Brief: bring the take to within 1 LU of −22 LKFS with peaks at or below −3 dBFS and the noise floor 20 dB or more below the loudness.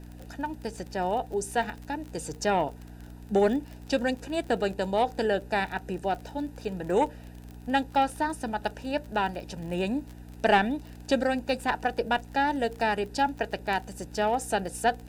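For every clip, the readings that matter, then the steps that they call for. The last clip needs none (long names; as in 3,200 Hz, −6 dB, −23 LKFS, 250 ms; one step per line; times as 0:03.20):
crackle rate 36 per second; mains hum 60 Hz; hum harmonics up to 300 Hz; level of the hum −42 dBFS; integrated loudness −29.0 LKFS; sample peak −7.5 dBFS; target loudness −22.0 LKFS
→ click removal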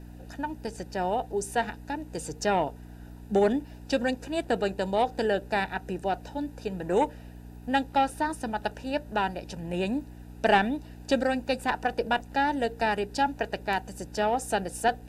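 crackle rate 0.13 per second; mains hum 60 Hz; hum harmonics up to 300 Hz; level of the hum −42 dBFS
→ hum removal 60 Hz, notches 5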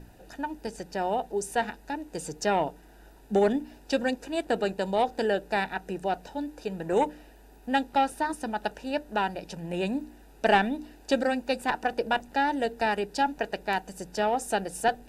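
mains hum none found; integrated loudness −29.0 LKFS; sample peak −7.5 dBFS; target loudness −22.0 LKFS
→ level +7 dB
brickwall limiter −3 dBFS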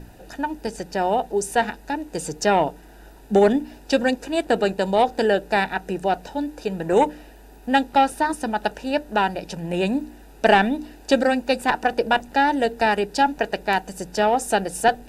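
integrated loudness −22.0 LKFS; sample peak −3.0 dBFS; background noise floor −46 dBFS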